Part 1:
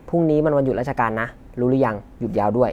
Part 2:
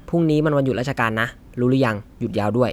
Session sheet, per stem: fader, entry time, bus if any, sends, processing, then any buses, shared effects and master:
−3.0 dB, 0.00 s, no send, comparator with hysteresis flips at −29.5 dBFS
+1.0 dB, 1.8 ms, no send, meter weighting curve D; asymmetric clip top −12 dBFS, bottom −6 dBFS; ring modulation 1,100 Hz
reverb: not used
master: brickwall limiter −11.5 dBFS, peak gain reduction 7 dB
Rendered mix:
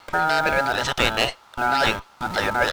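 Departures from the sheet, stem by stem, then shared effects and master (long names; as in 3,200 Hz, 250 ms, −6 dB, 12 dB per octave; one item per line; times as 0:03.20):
stem 1 −3.0 dB → −12.5 dB
master: missing brickwall limiter −11.5 dBFS, peak gain reduction 7 dB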